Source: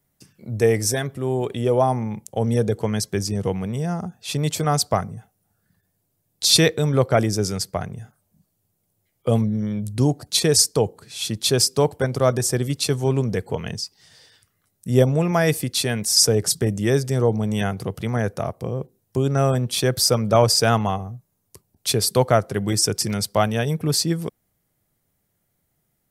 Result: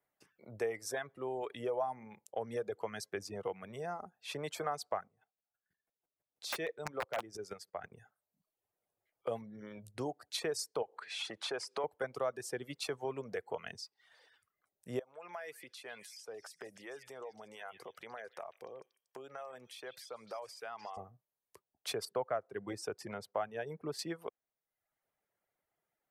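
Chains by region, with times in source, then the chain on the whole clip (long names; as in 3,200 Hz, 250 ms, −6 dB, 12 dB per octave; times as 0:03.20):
0:05.05–0:07.92: square-wave tremolo 6.1 Hz, depth 60%, duty 15% + wrap-around overflow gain 13.5 dB
0:10.82–0:11.84: downward compressor 2.5 to 1, threshold −34 dBFS + mid-hump overdrive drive 20 dB, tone 3,300 Hz, clips at −6 dBFS + bad sample-rate conversion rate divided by 2×, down none, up filtered
0:14.99–0:20.97: high-pass filter 500 Hz 6 dB per octave + downward compressor, threshold −33 dBFS + echo through a band-pass that steps 150 ms, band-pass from 2,600 Hz, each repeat 0.7 octaves, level −5 dB
0:22.05–0:23.99: high-shelf EQ 2,200 Hz −10 dB + one half of a high-frequency compander decoder only
whole clip: reverb reduction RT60 0.77 s; three-way crossover with the lows and the highs turned down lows −20 dB, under 410 Hz, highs −14 dB, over 2,600 Hz; downward compressor 2.5 to 1, threshold −31 dBFS; level −5 dB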